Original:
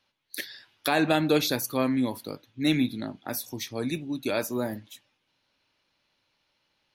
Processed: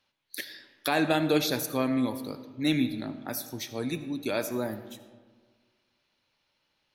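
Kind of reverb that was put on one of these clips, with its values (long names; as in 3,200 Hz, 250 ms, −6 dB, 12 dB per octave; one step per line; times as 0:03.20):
comb and all-pass reverb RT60 1.6 s, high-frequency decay 0.45×, pre-delay 35 ms, DRR 11.5 dB
level −2 dB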